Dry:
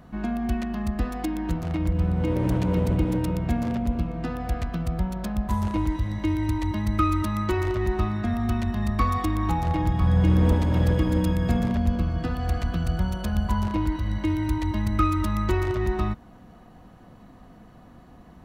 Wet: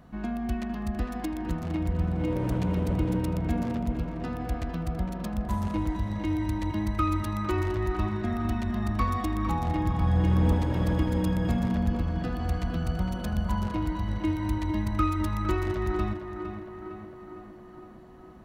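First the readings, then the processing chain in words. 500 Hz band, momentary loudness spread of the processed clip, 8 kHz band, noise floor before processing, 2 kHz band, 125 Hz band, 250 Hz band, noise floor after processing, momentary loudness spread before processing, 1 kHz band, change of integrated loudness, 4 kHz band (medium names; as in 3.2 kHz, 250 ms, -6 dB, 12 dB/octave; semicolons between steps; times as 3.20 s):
-3.0 dB, 8 LU, -4.0 dB, -49 dBFS, -3.0 dB, -3.5 dB, -3.0 dB, -47 dBFS, 7 LU, -3.0 dB, -3.5 dB, -3.5 dB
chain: on a send: tape echo 457 ms, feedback 71%, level -6.5 dB, low-pass 2.5 kHz; on the sum: trim -4 dB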